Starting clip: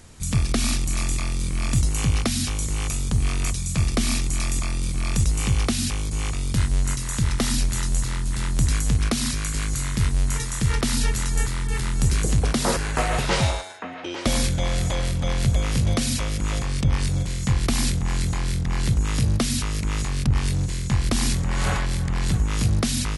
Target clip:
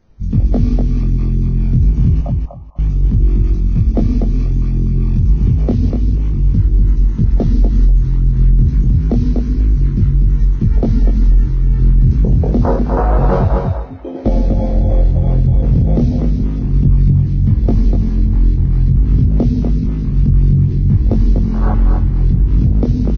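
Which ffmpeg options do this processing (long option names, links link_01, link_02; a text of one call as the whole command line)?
ffmpeg -i in.wav -filter_complex "[0:a]aemphasis=mode=reproduction:type=75kf,afwtdn=0.0631,acrossover=split=880[link_01][link_02];[link_01]acontrast=76[link_03];[link_03][link_02]amix=inputs=2:normalize=0,flanger=delay=18.5:depth=5.9:speed=0.28,asettb=1/sr,asplit=3[link_04][link_05][link_06];[link_04]atrim=end=2.214[link_07];[link_05]atrim=start=2.21:end=2.79,asetpts=PTS-STARTPTS,afade=type=in:duration=0.004:curve=qsin,afade=type=out:start_time=0.576:duration=0.004:curve=qsin,asuperpass=centerf=830:order=20:qfactor=1.2[link_08];[link_06]atrim=start=2.786[link_09];[link_07][link_08]acrossfade=duration=0.004:curve1=hsin:curve2=qsin[link_10];[link_10][link_09]acrossfade=duration=0.004:curve1=qsin:curve2=hsin,aecho=1:1:245|490|735:0.562|0.0844|0.0127,alimiter=level_in=9.5dB:limit=-1dB:release=50:level=0:latency=1,volume=-3dB" -ar 16000 -c:a libvorbis -b:a 16k out.ogg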